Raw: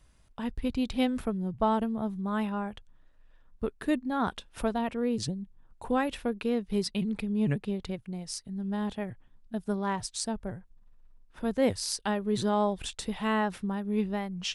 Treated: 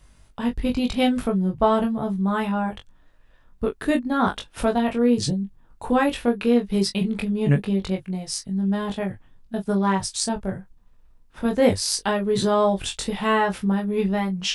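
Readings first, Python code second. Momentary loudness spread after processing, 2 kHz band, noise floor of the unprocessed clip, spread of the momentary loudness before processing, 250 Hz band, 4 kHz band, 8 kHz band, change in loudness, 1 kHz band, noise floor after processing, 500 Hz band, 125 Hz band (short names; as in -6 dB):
9 LU, +8.5 dB, -60 dBFS, 10 LU, +7.5 dB, +8.5 dB, +8.5 dB, +8.0 dB, +7.5 dB, -55 dBFS, +9.0 dB, +9.5 dB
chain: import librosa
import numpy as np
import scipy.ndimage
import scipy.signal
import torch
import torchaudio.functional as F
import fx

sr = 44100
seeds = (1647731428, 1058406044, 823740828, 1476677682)

y = fx.room_early_taps(x, sr, ms=(21, 41), db=(-3.0, -13.0))
y = F.gain(torch.from_numpy(y), 6.5).numpy()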